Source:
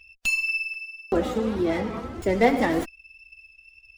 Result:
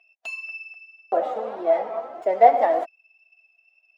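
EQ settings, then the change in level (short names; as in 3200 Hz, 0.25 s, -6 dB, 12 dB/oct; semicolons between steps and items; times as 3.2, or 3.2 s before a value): resonant high-pass 670 Hz, resonance Q 6.2; LPF 1100 Hz 6 dB/oct; -1.5 dB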